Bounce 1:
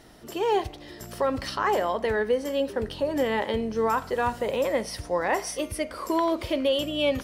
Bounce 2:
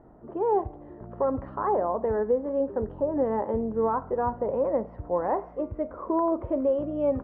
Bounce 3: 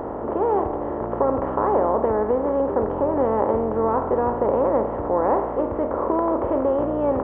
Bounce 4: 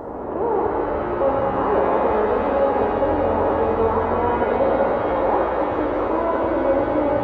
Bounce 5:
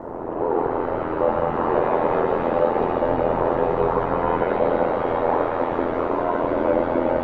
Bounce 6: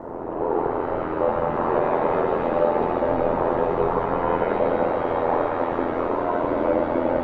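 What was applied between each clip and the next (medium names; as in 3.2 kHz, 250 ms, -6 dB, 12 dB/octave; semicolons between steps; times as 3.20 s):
low-pass 1.1 kHz 24 dB/octave
spectral levelling over time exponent 0.4
pitch-shifted reverb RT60 3.2 s, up +7 st, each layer -8 dB, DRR -2 dB; trim -3 dB
ring modulator 42 Hz; trim +1.5 dB
reverberation RT60 0.85 s, pre-delay 5 ms, DRR 10 dB; trim -1.5 dB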